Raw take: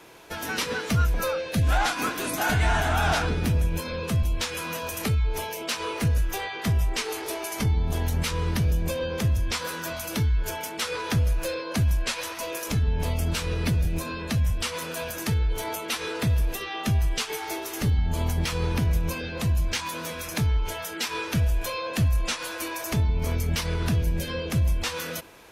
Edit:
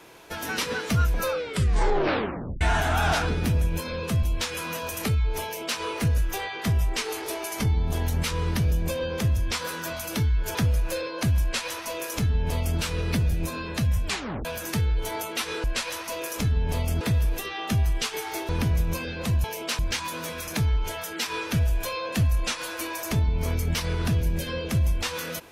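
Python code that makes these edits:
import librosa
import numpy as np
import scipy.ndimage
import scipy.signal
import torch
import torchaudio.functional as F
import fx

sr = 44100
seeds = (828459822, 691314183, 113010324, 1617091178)

y = fx.edit(x, sr, fx.tape_stop(start_s=1.33, length_s=1.28),
    fx.duplicate(start_s=5.44, length_s=0.35, to_s=19.6),
    fx.cut(start_s=10.55, length_s=0.53),
    fx.duplicate(start_s=11.95, length_s=1.37, to_s=16.17),
    fx.tape_stop(start_s=14.59, length_s=0.39),
    fx.cut(start_s=17.65, length_s=1.0), tone=tone)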